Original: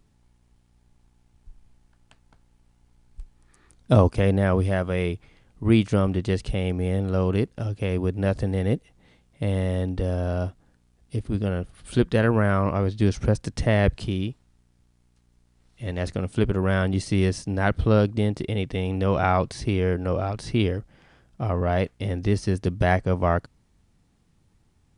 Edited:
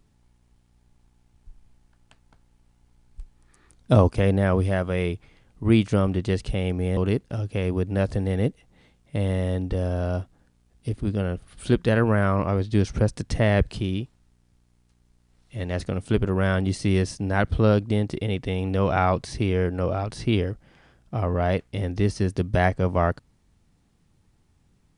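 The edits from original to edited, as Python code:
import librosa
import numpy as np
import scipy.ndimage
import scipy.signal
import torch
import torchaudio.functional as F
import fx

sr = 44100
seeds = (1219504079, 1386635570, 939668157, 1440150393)

y = fx.edit(x, sr, fx.cut(start_s=6.97, length_s=0.27), tone=tone)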